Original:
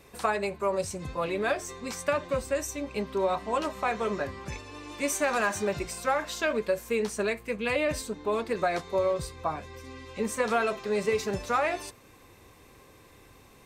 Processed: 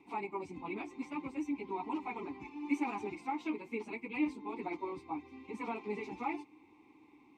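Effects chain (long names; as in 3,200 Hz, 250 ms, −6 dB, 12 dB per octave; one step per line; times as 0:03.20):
time stretch by phase vocoder 0.54×
formant filter u
level +8.5 dB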